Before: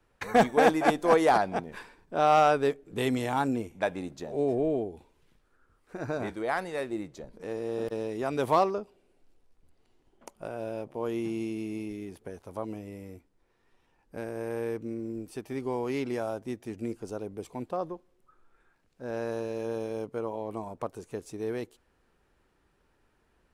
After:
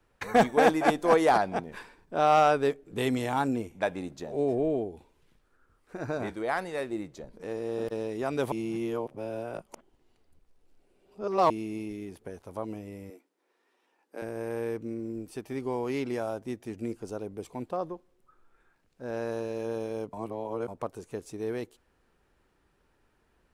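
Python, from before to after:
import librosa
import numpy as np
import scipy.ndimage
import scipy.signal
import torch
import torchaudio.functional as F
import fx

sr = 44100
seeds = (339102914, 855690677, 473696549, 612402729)

y = fx.highpass(x, sr, hz=280.0, slope=24, at=(13.1, 14.22))
y = fx.edit(y, sr, fx.reverse_span(start_s=8.52, length_s=2.98),
    fx.reverse_span(start_s=20.13, length_s=0.55), tone=tone)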